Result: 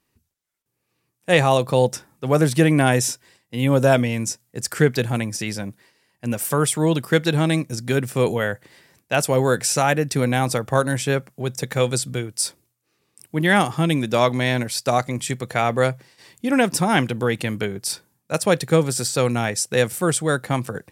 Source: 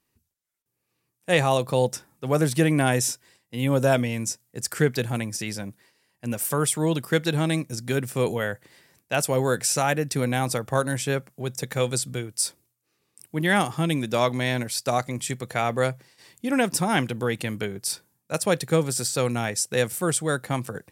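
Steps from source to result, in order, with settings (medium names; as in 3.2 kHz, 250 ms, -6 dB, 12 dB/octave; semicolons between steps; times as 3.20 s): treble shelf 6.8 kHz -4.5 dB; trim +4.5 dB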